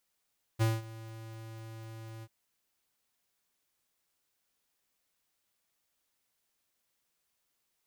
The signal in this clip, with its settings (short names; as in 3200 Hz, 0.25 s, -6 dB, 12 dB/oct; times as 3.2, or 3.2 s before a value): ADSR square 112 Hz, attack 27 ms, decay 0.198 s, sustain -20 dB, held 1.64 s, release 48 ms -25.5 dBFS